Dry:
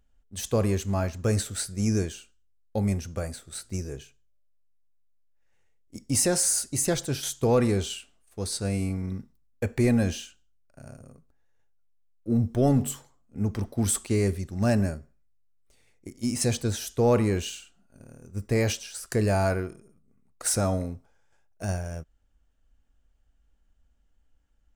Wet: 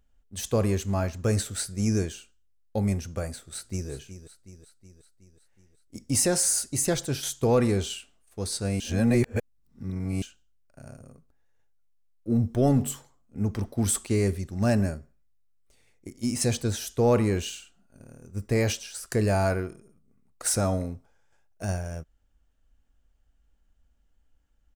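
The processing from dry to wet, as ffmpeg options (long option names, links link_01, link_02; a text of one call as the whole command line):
ffmpeg -i in.wav -filter_complex "[0:a]asplit=2[link_01][link_02];[link_02]afade=type=in:start_time=3.44:duration=0.01,afade=type=out:start_time=3.9:duration=0.01,aecho=0:1:370|740|1110|1480|1850|2220|2590:0.251189|0.150713|0.0904279|0.0542567|0.032554|0.0195324|0.0117195[link_03];[link_01][link_03]amix=inputs=2:normalize=0,asplit=3[link_04][link_05][link_06];[link_04]atrim=end=8.802[link_07];[link_05]atrim=start=8.798:end=10.222,asetpts=PTS-STARTPTS,areverse[link_08];[link_06]atrim=start=10.218[link_09];[link_07][link_08]acrossfade=duration=0.004:curve1=hsin:curve2=hsin[link_10];[link_10][link_09]acrossfade=duration=0.004:curve1=hsin:curve2=hsin" out.wav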